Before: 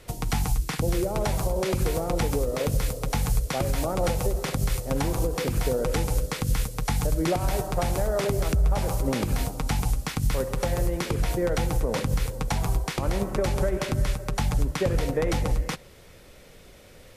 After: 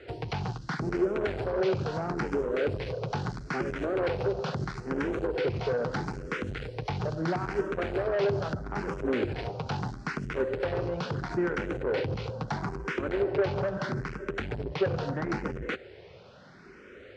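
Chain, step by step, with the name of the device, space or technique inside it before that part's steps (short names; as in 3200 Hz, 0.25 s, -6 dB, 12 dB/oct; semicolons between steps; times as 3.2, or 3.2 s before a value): barber-pole phaser into a guitar amplifier (endless phaser +0.76 Hz; soft clip -28 dBFS, distortion -10 dB; speaker cabinet 95–4400 Hz, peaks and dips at 390 Hz +9 dB, 1500 Hz +8 dB, 3600 Hz -5 dB); gain +2.5 dB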